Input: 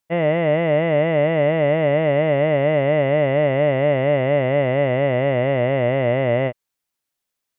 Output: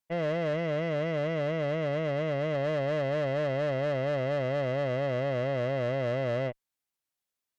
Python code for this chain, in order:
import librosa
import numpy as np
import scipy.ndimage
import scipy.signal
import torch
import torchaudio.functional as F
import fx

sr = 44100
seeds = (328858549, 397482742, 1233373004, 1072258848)

y = fx.peak_eq(x, sr, hz=760.0, db=-3.0, octaves=1.8, at=(0.53, 2.55))
y = fx.tube_stage(y, sr, drive_db=19.0, bias=0.35)
y = F.gain(torch.from_numpy(y), -6.5).numpy()